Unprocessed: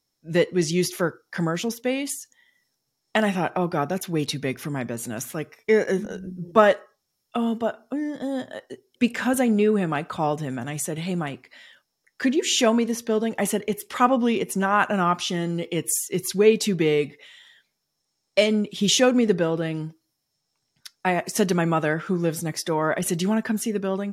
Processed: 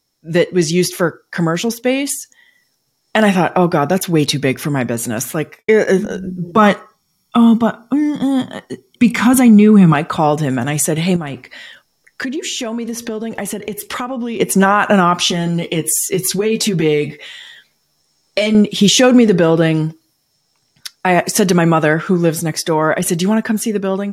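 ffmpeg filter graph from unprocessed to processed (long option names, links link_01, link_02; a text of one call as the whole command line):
ffmpeg -i in.wav -filter_complex "[0:a]asettb=1/sr,asplit=3[link_01][link_02][link_03];[link_01]atrim=end=5.304[link_04];[link_02]atrim=start=5.3:end=5.79,asetpts=PTS-STARTPTS,afade=type=in:duration=0.004:curve=qsin,afade=type=out:start_time=0.486:duration=0.004:curve=qsin,agate=range=-33dB:threshold=-50dB:ratio=3:release=100:detection=peak,bandreject=frequency=5500:width=8.8[link_05];[link_03]atrim=start=5.786[link_06];[link_04][link_05]acrossfade=duration=0.004:curve1=hsin:curve2=qsin[link_07];[link_07][link_06]acrossfade=duration=0.004:curve1=qsin:curve2=hsin,asettb=1/sr,asplit=3[link_08][link_09][link_10];[link_08]atrim=end=6.574[link_11];[link_09]atrim=start=6.57:end=9.94,asetpts=PTS-STARTPTS,afade=type=in:duration=0.004:curve=qsin,afade=type=out:start_time=3.366:duration=0.004:curve=qsin,equalizer=frequency=180:width_type=o:width=0.44:gain=9,aecho=1:1:0.9:0.62,atrim=end_sample=148617[link_12];[link_10]atrim=start=9.936[link_13];[link_11][link_12]acrossfade=duration=0.004:curve1=hsin:curve2=qsin[link_14];[link_14][link_13]acrossfade=duration=0.004:curve1=qsin:curve2=hsin,asettb=1/sr,asplit=3[link_15][link_16][link_17];[link_15]atrim=end=11.164[link_18];[link_16]atrim=start=11.16:end=14.4,asetpts=PTS-STARTPTS,afade=type=in:duration=0.004:curve=qsin,afade=type=out:start_time=3.236:duration=0.004:curve=qsin,lowshelf=frequency=130:gain=6.5,acompressor=threshold=-32dB:ratio=10:attack=3.2:release=140:knee=1:detection=peak[link_19];[link_17]atrim=start=14.396[link_20];[link_18][link_19]acrossfade=duration=0.004:curve1=hsin:curve2=qsin[link_21];[link_21][link_20]acrossfade=duration=0.004:curve1=qsin:curve2=hsin,asettb=1/sr,asplit=3[link_22][link_23][link_24];[link_22]atrim=end=15.284[link_25];[link_23]atrim=start=15.28:end=18.55,asetpts=PTS-STARTPTS,afade=type=in:duration=0.004:curve=qsin,afade=type=out:start_time=3.266:duration=0.004:curve=qsin,acompressor=threshold=-27dB:ratio=4:attack=3.2:release=140:knee=1:detection=peak,asplit=2[link_26][link_27];[link_27]adelay=13,volume=-5dB[link_28];[link_26][link_28]amix=inputs=2:normalize=0,atrim=end_sample=144207[link_29];[link_24]atrim=start=18.546[link_30];[link_25][link_29]acrossfade=duration=0.004:curve1=hsin:curve2=qsin[link_31];[link_31][link_30]acrossfade=duration=0.004:curve1=qsin:curve2=hsin,dynaudnorm=framelen=340:gausssize=17:maxgain=11.5dB,alimiter=level_in=9dB:limit=-1dB:release=50:level=0:latency=1,volume=-1dB" out.wav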